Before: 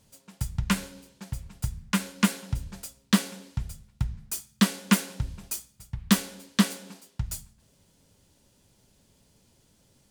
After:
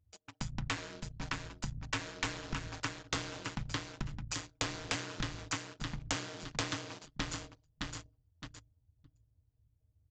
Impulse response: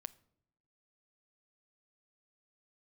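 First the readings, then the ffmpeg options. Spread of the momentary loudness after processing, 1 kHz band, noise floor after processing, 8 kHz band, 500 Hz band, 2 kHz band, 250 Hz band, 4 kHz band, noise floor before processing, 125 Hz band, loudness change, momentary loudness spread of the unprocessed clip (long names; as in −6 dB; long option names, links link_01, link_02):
9 LU, −5.5 dB, −76 dBFS, −8.5 dB, −4.0 dB, −5.0 dB, −16.5 dB, −6.0 dB, −65 dBFS, −10.0 dB, −10.5 dB, 16 LU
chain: -filter_complex "[0:a]equalizer=frequency=110:width_type=o:width=3:gain=-14,bandreject=frequency=105.2:width_type=h:width=4,bandreject=frequency=210.4:width_type=h:width=4,bandreject=frequency=315.6:width_type=h:width=4,bandreject=frequency=420.8:width_type=h:width=4,bandreject=frequency=526:width_type=h:width=4,bandreject=frequency=631.2:width_type=h:width=4,bandreject=frequency=736.4:width_type=h:width=4,bandreject=frequency=841.6:width_type=h:width=4,bandreject=frequency=946.8:width_type=h:width=4,bandreject=frequency=1052:width_type=h:width=4,bandreject=frequency=1157.2:width_type=h:width=4,bandreject=frequency=1262.4:width_type=h:width=4,bandreject=frequency=1367.6:width_type=h:width=4,bandreject=frequency=1472.8:width_type=h:width=4,bandreject=frequency=1578:width_type=h:width=4,bandreject=frequency=1683.2:width_type=h:width=4,bandreject=frequency=1788.4:width_type=h:width=4,bandreject=frequency=1893.6:width_type=h:width=4,bandreject=frequency=1998.8:width_type=h:width=4,asplit=2[link_01][link_02];[link_02]aecho=0:1:614|1228|1842|2456:0.422|0.143|0.0487|0.0166[link_03];[link_01][link_03]amix=inputs=2:normalize=0,anlmdn=0.00158,highshelf=frequency=4700:gain=-8.5,aeval=exprs='val(0)*sin(2*PI*84*n/s)':channel_layout=same,aresample=16000,aeval=exprs='0.0473*(abs(mod(val(0)/0.0473+3,4)-2)-1)':channel_layout=same,aresample=44100,acompressor=threshold=-43dB:ratio=4,volume=9dB"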